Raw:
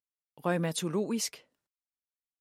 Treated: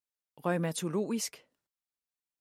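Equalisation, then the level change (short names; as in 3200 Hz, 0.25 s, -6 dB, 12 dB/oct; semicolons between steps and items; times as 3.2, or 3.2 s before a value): dynamic EQ 3900 Hz, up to -4 dB, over -47 dBFS, Q 1.3; -1.0 dB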